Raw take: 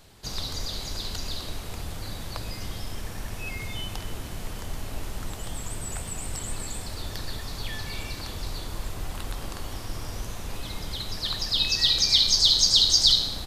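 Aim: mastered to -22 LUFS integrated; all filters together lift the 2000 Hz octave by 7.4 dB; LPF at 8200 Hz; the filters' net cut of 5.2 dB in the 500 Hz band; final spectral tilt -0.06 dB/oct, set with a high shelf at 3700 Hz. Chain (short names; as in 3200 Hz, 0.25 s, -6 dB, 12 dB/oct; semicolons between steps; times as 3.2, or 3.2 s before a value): LPF 8200 Hz; bell 500 Hz -7.5 dB; bell 2000 Hz +7.5 dB; high shelf 3700 Hz +7 dB; gain -4 dB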